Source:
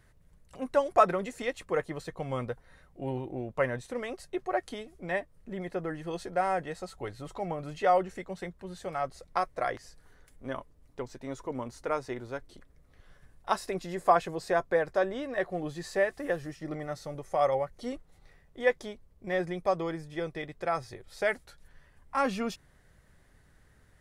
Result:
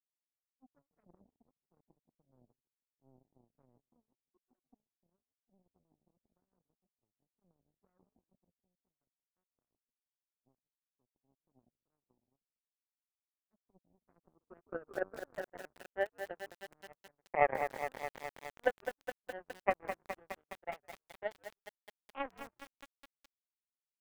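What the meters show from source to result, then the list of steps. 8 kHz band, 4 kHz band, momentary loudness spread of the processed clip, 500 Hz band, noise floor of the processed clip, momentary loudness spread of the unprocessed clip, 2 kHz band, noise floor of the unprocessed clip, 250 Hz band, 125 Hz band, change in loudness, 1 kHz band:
-14.0 dB, -13.5 dB, 17 LU, -12.0 dB, under -85 dBFS, 14 LU, -9.0 dB, -62 dBFS, -18.5 dB, -21.0 dB, -7.5 dB, -11.5 dB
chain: on a send: frequency-shifting echo 0.158 s, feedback 38%, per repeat -110 Hz, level -10 dB; on the sum: low-pass sweep 230 Hz -> 790 Hz, 14.12–15.57; power-law curve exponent 3; lo-fi delay 0.208 s, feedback 80%, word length 7-bit, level -8 dB; gain -1.5 dB

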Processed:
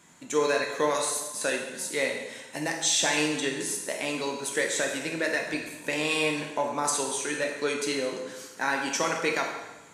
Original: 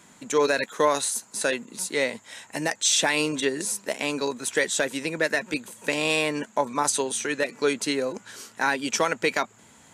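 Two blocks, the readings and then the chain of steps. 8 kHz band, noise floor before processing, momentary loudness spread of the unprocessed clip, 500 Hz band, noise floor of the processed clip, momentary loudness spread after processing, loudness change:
-2.0 dB, -54 dBFS, 7 LU, -3.0 dB, -47 dBFS, 7 LU, -2.5 dB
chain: plate-style reverb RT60 1.1 s, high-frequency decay 0.95×, DRR 0.5 dB; gain -5 dB

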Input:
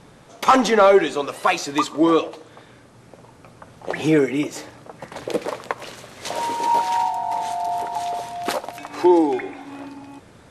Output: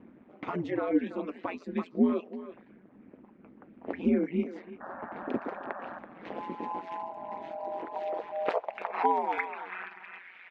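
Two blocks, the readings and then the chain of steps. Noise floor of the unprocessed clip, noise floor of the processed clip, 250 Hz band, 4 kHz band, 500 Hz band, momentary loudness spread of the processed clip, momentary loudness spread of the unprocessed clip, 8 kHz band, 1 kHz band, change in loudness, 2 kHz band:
-49 dBFS, -57 dBFS, -9.0 dB, under -20 dB, -13.5 dB, 16 LU, 20 LU, under -35 dB, -12.5 dB, -12.5 dB, -11.5 dB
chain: reverb removal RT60 0.66 s; low-pass opened by the level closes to 2300 Hz, open at -17 dBFS; bell 2300 Hz +15 dB 1.5 oct; compressor 2.5:1, threshold -19 dBFS, peak gain reduction 10.5 dB; painted sound noise, 4.8–5.99, 620–1800 Hz -24 dBFS; ring modulator 88 Hz; band-pass sweep 250 Hz -> 2500 Hz, 7.36–10.51; speakerphone echo 0.33 s, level -12 dB; gain +4 dB

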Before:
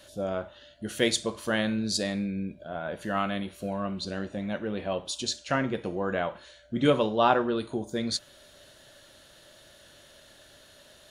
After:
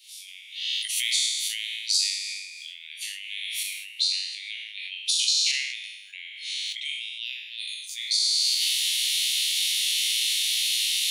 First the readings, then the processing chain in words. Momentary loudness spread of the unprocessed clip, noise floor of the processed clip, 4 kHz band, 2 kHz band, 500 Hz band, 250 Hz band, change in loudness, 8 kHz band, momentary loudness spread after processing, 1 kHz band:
12 LU, -44 dBFS, +14.0 dB, +3.5 dB, under -40 dB, under -40 dB, +5.0 dB, +13.0 dB, 14 LU, under -40 dB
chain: spectral trails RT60 0.93 s; recorder AGC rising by 67 dB/s; steep high-pass 2100 Hz 96 dB/oct; notch 6800 Hz, Q 19; sustainer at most 48 dB/s

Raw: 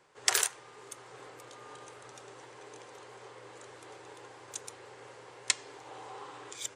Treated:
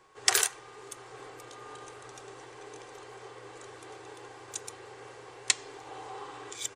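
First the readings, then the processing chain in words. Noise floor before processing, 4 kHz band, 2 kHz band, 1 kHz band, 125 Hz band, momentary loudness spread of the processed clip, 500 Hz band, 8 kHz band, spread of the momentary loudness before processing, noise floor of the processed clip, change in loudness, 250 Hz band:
-53 dBFS, +2.5 dB, +2.5 dB, +3.0 dB, +3.5 dB, 20 LU, +3.5 dB, +2.5 dB, 21 LU, -50 dBFS, +2.5 dB, +4.0 dB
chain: low shelf 64 Hz +9.5 dB; comb 2.6 ms, depth 33%; whine 1100 Hz -65 dBFS; gain +2 dB

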